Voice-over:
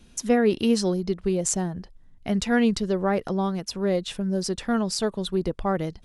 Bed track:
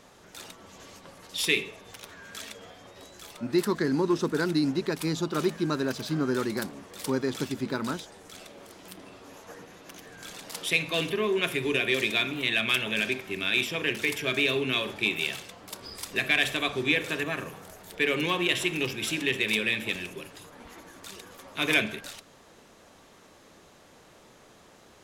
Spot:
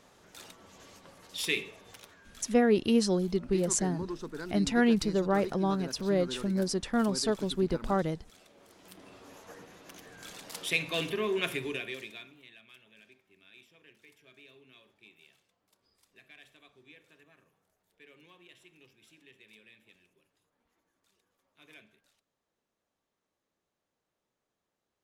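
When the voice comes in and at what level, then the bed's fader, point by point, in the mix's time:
2.25 s, -3.5 dB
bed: 1.95 s -5.5 dB
2.26 s -13 dB
8.45 s -13 dB
9.18 s -4 dB
11.52 s -4 dB
12.62 s -31 dB

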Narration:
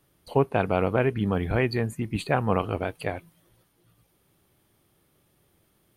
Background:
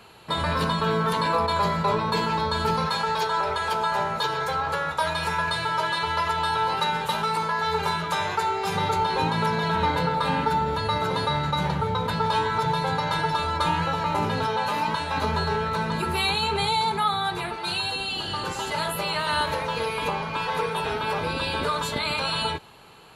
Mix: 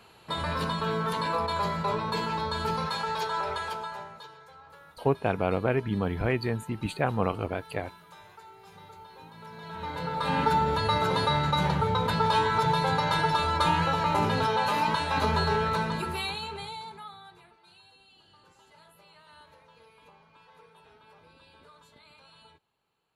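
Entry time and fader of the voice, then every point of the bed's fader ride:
4.70 s, -3.0 dB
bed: 3.58 s -5.5 dB
4.43 s -25 dB
9.32 s -25 dB
10.43 s -0.5 dB
15.71 s -0.5 dB
17.66 s -29.5 dB

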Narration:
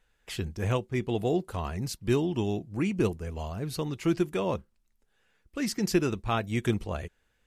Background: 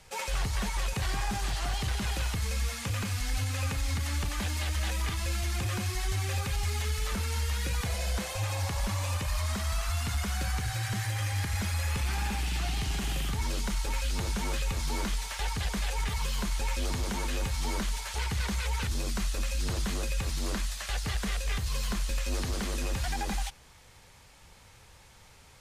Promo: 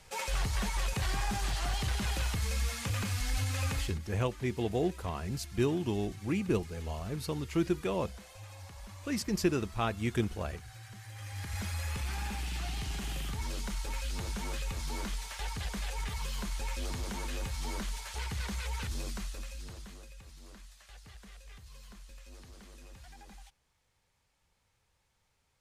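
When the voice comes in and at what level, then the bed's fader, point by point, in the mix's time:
3.50 s, -3.5 dB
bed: 3.78 s -1.5 dB
4.00 s -17 dB
11.02 s -17 dB
11.59 s -5.5 dB
19.03 s -5.5 dB
20.16 s -20.5 dB

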